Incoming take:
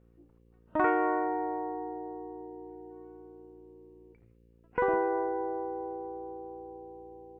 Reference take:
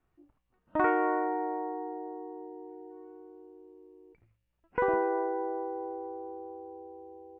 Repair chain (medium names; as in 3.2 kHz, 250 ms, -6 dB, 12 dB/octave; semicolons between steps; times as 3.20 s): de-hum 57.7 Hz, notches 9